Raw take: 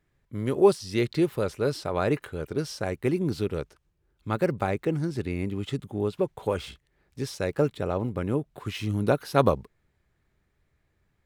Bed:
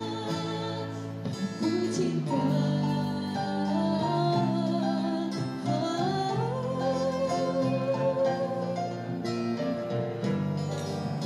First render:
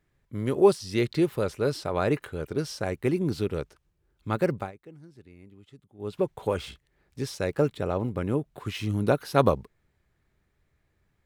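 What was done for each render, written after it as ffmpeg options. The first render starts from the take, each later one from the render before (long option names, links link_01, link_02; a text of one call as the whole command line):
ffmpeg -i in.wav -filter_complex "[0:a]asplit=3[link_01][link_02][link_03];[link_01]atrim=end=4.72,asetpts=PTS-STARTPTS,afade=type=out:start_time=4.53:duration=0.19:silence=0.0891251[link_04];[link_02]atrim=start=4.72:end=5.98,asetpts=PTS-STARTPTS,volume=-21dB[link_05];[link_03]atrim=start=5.98,asetpts=PTS-STARTPTS,afade=type=in:duration=0.19:silence=0.0891251[link_06];[link_04][link_05][link_06]concat=n=3:v=0:a=1" out.wav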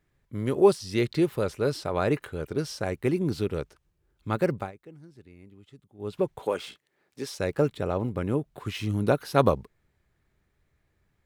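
ffmpeg -i in.wav -filter_complex "[0:a]asettb=1/sr,asplit=3[link_01][link_02][link_03];[link_01]atrim=end=6.424[link_04];[link_02]atrim=start=6.42:end=7.39,asetpts=PTS-STARTPTS,afade=type=in:duration=0.004:curve=qsin,afade=type=out:start_time=0.966:duration=0.004:curve=qsin,highpass=260[link_05];[link_03]atrim=start=7.386[link_06];[link_04][link_05]acrossfade=duration=0.004:curve1=hsin:curve2=qsin[link_07];[link_07][link_06]acrossfade=duration=0.004:curve1=qsin:curve2=hsin" out.wav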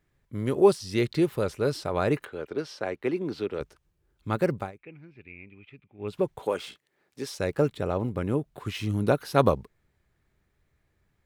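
ffmpeg -i in.wav -filter_complex "[0:a]asettb=1/sr,asplit=3[link_01][link_02][link_03];[link_01]atrim=end=2.254[link_04];[link_02]atrim=start=2.25:end=3.61,asetpts=PTS-STARTPTS,afade=type=in:duration=0.004:curve=qsin,afade=type=out:start_time=1.356:duration=0.004:curve=qsin,acrossover=split=250 4800:gain=0.2 1 0.178[link_05][link_06][link_07];[link_05][link_06][link_07]amix=inputs=3:normalize=0[link_08];[link_03]atrim=start=3.606[link_09];[link_04][link_08]acrossfade=duration=0.004:curve1=hsin:curve2=qsin[link_10];[link_10][link_09]acrossfade=duration=0.004:curve1=qsin:curve2=hsin,asettb=1/sr,asplit=3[link_11][link_12][link_13];[link_11]atrim=end=4.784[link_14];[link_12]atrim=start=4.78:end=6.08,asetpts=PTS-STARTPTS,afade=type=in:duration=0.004:curve=qsin,afade=type=out:start_time=1.296:duration=0.004:curve=qsin,lowpass=frequency=2400:width_type=q:width=16[link_15];[link_13]atrim=start=6.076[link_16];[link_14][link_15]acrossfade=duration=0.004:curve1=hsin:curve2=qsin[link_17];[link_17][link_16]acrossfade=duration=0.004:curve1=qsin:curve2=hsin" out.wav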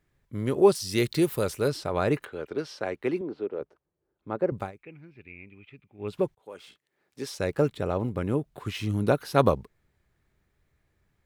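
ffmpeg -i in.wav -filter_complex "[0:a]asettb=1/sr,asplit=3[link_01][link_02][link_03];[link_01]atrim=end=0.754[link_04];[link_02]atrim=start=0.75:end=1.68,asetpts=PTS-STARTPTS,afade=type=in:duration=0.004:curve=qsin,afade=type=out:start_time=0.926:duration=0.004:curve=qsin,aemphasis=mode=production:type=50kf[link_05];[link_03]atrim=start=1.676[link_06];[link_04][link_05]acrossfade=duration=0.004:curve1=hsin:curve2=qsin[link_07];[link_07][link_06]acrossfade=duration=0.004:curve1=qsin:curve2=hsin,asettb=1/sr,asplit=3[link_08][link_09][link_10];[link_08]atrim=end=3.214[link_11];[link_09]atrim=start=3.21:end=4.52,asetpts=PTS-STARTPTS,afade=type=in:duration=0.004:curve=qsin,afade=type=out:start_time=1.306:duration=0.004:curve=qsin,bandpass=frequency=510:width_type=q:width=0.88[link_12];[link_10]atrim=start=4.516[link_13];[link_11][link_12]acrossfade=duration=0.004:curve1=hsin:curve2=qsin[link_14];[link_14][link_13]acrossfade=duration=0.004:curve1=qsin:curve2=hsin,asplit=2[link_15][link_16];[link_15]atrim=end=6.35,asetpts=PTS-STARTPTS,afade=type=out:start_time=6.346:duration=0.004:curve=hsin[link_17];[link_16]atrim=start=6.35,asetpts=PTS-STARTPTS,afade=type=in:duration=0.93[link_18];[link_17][link_18]concat=n=2:v=0:a=1" out.wav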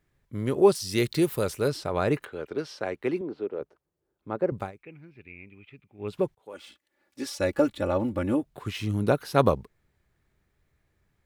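ffmpeg -i in.wav -filter_complex "[0:a]asettb=1/sr,asplit=3[link_01][link_02][link_03];[link_01]atrim=end=6.534[link_04];[link_02]atrim=start=6.53:end=8.44,asetpts=PTS-STARTPTS,afade=type=in:duration=0.004:curve=qsin,afade=type=out:start_time=1.906:duration=0.004:curve=qsin,aecho=1:1:3.5:0.84,atrim=end_sample=84231[link_05];[link_03]atrim=start=8.436[link_06];[link_04][link_05]acrossfade=duration=0.004:curve1=hsin:curve2=qsin[link_07];[link_07][link_06]acrossfade=duration=0.004:curve1=qsin:curve2=hsin" out.wav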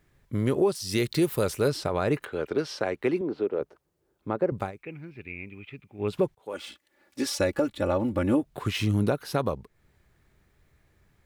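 ffmpeg -i in.wav -filter_complex "[0:a]asplit=2[link_01][link_02];[link_02]acompressor=threshold=-33dB:ratio=6,volume=2dB[link_03];[link_01][link_03]amix=inputs=2:normalize=0,alimiter=limit=-14dB:level=0:latency=1:release=431" out.wav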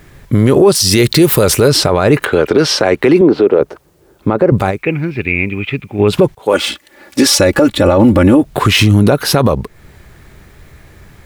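ffmpeg -i in.wav -af "acontrast=32,alimiter=level_in=19dB:limit=-1dB:release=50:level=0:latency=1" out.wav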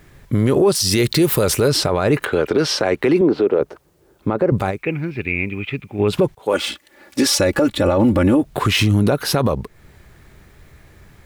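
ffmpeg -i in.wav -af "volume=-6.5dB" out.wav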